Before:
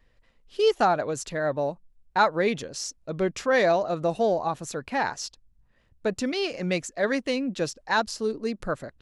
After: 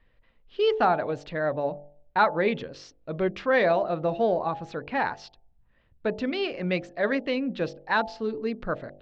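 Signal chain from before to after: low-pass 3.7 kHz 24 dB/octave; de-hum 48.48 Hz, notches 18

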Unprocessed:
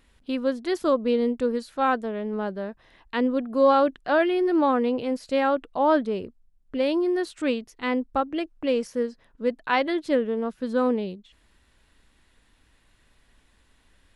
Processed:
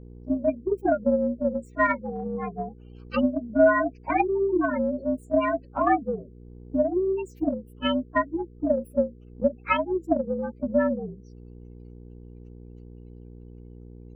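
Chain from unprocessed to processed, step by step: frequency axis rescaled in octaves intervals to 120%; band-stop 3.4 kHz, Q 19; spectral gate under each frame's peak -15 dB strong; mains buzz 60 Hz, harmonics 8, -44 dBFS -5 dB/octave; transient shaper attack +8 dB, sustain -3 dB; trim -1.5 dB

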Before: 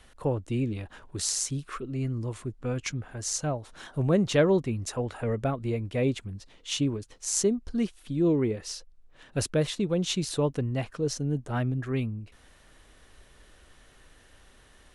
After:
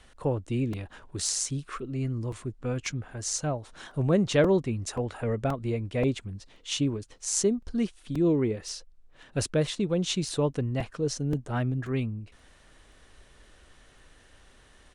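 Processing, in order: resampled via 22.05 kHz; crackling interface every 0.53 s, samples 128, repeat, from 0.73 s

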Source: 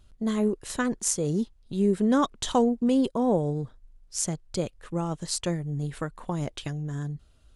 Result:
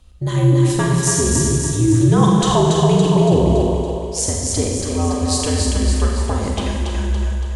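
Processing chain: band-stop 1.5 kHz, Q 11; two-band feedback delay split 490 Hz, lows 150 ms, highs 282 ms, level -3 dB; frequency shift -82 Hz; Schroeder reverb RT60 1.5 s, combs from 31 ms, DRR 0 dB; in parallel at -2 dB: peak limiter -13.5 dBFS, peak gain reduction 7.5 dB; on the sum: trim +2 dB

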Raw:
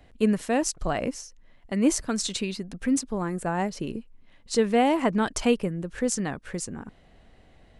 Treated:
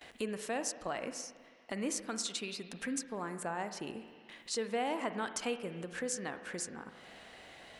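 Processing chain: high-pass 600 Hz 6 dB/octave; gate with hold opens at -54 dBFS; compression 2:1, threshold -53 dBFS, peak gain reduction 17 dB; spring tank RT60 1.5 s, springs 40/54 ms, chirp 75 ms, DRR 9 dB; tape noise reduction on one side only encoder only; trim +6.5 dB

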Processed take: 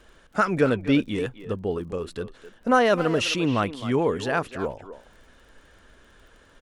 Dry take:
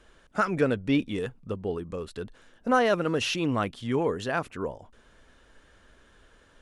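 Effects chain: crackle 20 per s -49 dBFS; speakerphone echo 260 ms, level -12 dB; trim +3.5 dB

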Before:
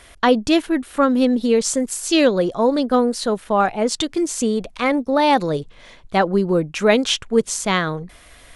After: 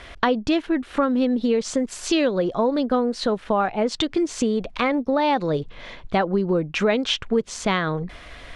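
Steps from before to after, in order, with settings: low-pass 4.1 kHz 12 dB/octave; compression 3:1, threshold -27 dBFS, peak gain reduction 13 dB; trim +6 dB

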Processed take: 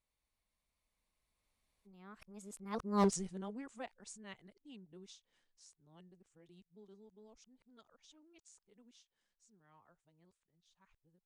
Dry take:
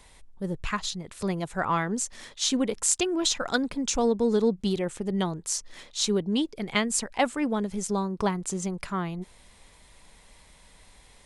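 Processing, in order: reverse the whole clip; Doppler pass-by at 3.03 s, 28 m/s, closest 1.6 m; one-sided clip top -28 dBFS

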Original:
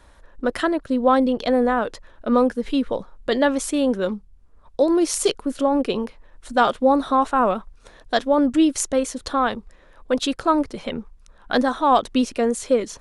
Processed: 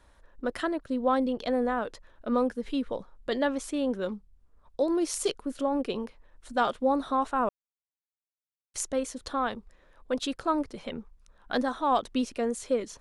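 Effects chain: 3.47–3.95 s: treble shelf 7.3 kHz -7 dB; 7.49–8.74 s: mute; trim -8.5 dB

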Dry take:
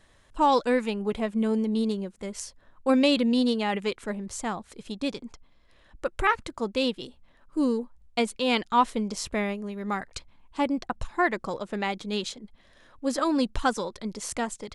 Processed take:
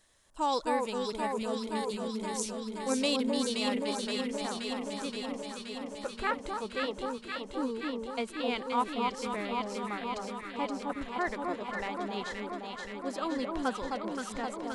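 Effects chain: tone controls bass -5 dB, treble +11 dB, from 3.84 s treble -4 dB; echo whose repeats swap between lows and highs 262 ms, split 1.2 kHz, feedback 86%, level -2 dB; trim -8.5 dB

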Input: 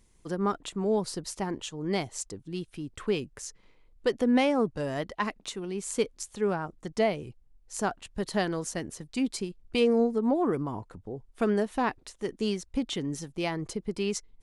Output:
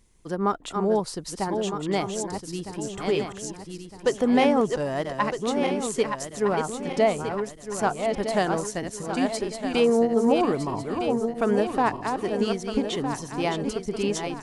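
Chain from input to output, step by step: backward echo that repeats 630 ms, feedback 65%, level -5.5 dB; dynamic bell 820 Hz, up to +5 dB, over -39 dBFS, Q 0.96; trim +1.5 dB

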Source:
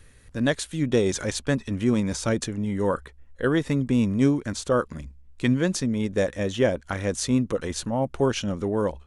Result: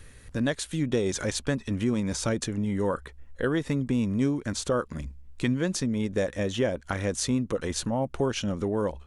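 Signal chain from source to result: compression 2:1, threshold -32 dBFS, peak gain reduction 9.5 dB; trim +3.5 dB

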